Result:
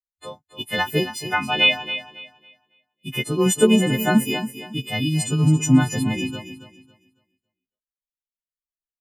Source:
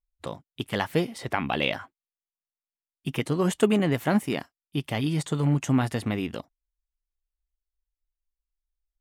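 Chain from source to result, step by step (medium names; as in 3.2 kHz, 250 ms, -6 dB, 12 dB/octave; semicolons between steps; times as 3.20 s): partials quantised in pitch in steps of 3 st; feedback delay 276 ms, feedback 41%, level -8 dB; spectral contrast expander 1.5:1; trim +5 dB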